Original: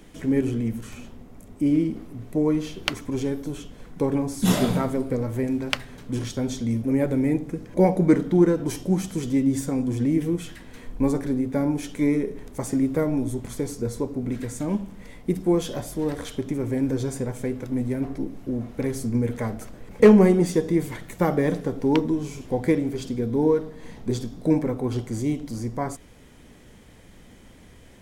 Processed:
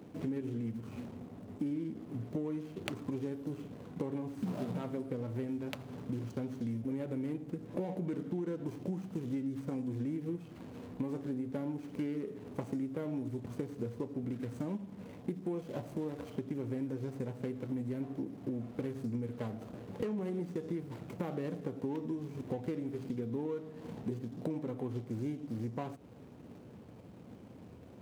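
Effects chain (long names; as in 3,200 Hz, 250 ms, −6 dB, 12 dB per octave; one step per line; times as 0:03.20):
running median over 25 samples
high-pass filter 89 Hz 24 dB per octave
brickwall limiter −13.5 dBFS, peak gain reduction 11 dB
downward compressor 6 to 1, threshold −35 dBFS, peak gain reduction 16.5 dB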